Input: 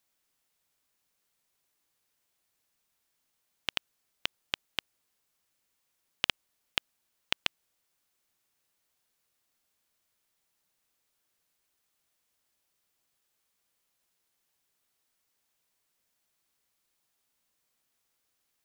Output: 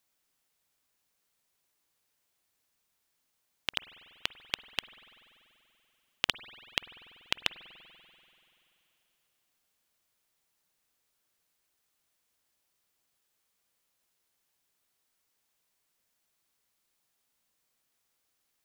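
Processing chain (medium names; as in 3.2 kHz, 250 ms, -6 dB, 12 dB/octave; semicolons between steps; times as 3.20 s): spring tank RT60 3 s, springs 48 ms, chirp 35 ms, DRR 14.5 dB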